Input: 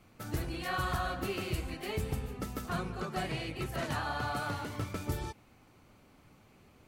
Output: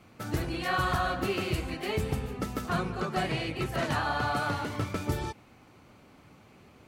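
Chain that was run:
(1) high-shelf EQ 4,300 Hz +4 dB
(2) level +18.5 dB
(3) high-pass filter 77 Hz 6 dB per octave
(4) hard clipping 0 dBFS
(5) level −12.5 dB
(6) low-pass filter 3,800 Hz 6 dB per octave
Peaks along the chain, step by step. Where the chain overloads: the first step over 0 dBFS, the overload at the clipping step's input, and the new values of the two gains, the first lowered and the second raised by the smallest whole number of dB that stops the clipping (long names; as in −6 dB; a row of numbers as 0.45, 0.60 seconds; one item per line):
−23.0, −4.5, −3.5, −3.5, −16.0, −16.5 dBFS
no step passes full scale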